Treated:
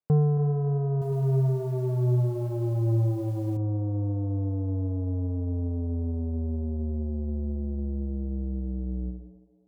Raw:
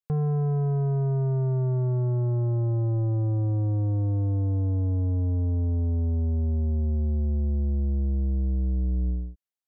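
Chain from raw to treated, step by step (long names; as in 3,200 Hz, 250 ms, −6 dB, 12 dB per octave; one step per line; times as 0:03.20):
reverb reduction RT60 1.6 s
resonant band-pass 290 Hz, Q 0.51
feedback echo with a high-pass in the loop 274 ms, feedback 51%, high-pass 390 Hz, level −10.5 dB
0:00.91–0:03.57: feedback echo at a low word length 105 ms, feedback 55%, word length 10 bits, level −5 dB
level +7 dB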